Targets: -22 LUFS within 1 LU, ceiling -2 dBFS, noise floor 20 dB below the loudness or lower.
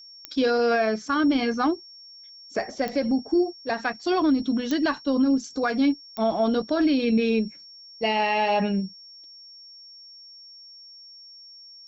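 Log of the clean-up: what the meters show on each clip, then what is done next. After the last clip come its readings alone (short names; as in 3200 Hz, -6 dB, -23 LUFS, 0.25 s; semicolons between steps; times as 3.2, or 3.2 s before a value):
clicks 4; steady tone 5500 Hz; tone level -44 dBFS; loudness -24.0 LUFS; peak -13.5 dBFS; loudness target -22.0 LUFS
-> de-click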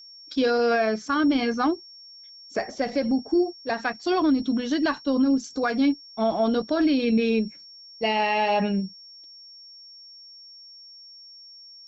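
clicks 0; steady tone 5500 Hz; tone level -44 dBFS
-> notch 5500 Hz, Q 30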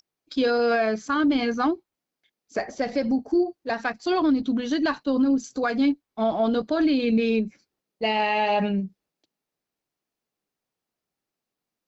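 steady tone none; loudness -24.5 LUFS; peak -14.0 dBFS; loudness target -22.0 LUFS
-> gain +2.5 dB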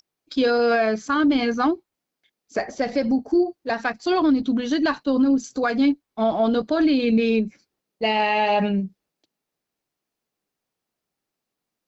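loudness -22.0 LUFS; peak -11.5 dBFS; noise floor -84 dBFS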